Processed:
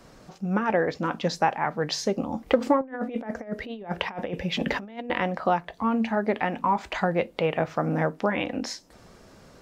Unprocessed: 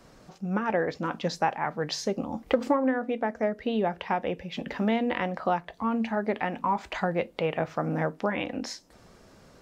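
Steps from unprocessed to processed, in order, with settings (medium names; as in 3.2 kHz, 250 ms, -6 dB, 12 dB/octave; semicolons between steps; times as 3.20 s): 2.81–5.10 s: compressor with a negative ratio -33 dBFS, ratio -0.5; trim +3 dB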